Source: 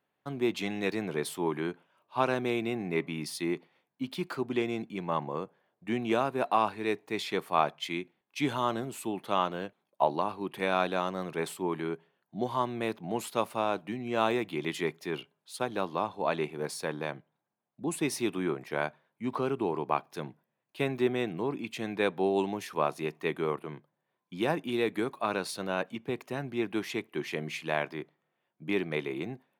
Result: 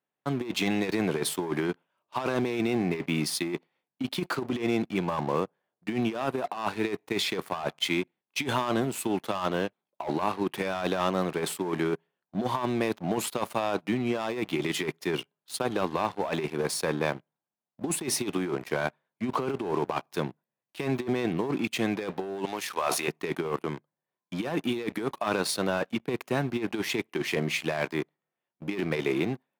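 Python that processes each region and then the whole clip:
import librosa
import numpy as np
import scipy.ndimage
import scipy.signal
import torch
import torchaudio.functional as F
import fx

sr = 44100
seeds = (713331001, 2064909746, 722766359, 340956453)

y = fx.chain(x, sr, fx.highpass(hz=1100.0, slope=6),
    fx.sustainer(db_per_s=68.0), at=(22.45, 23.08))
y = fx.leveller(y, sr, passes=3)
y = scipy.signal.sosfilt(scipy.signal.butter(2, 77.0, 'highpass', fs=sr, output='sos'), y)
y = fx.over_compress(y, sr, threshold_db=-22.0, ratio=-0.5)
y = F.gain(torch.from_numpy(y), -5.0).numpy()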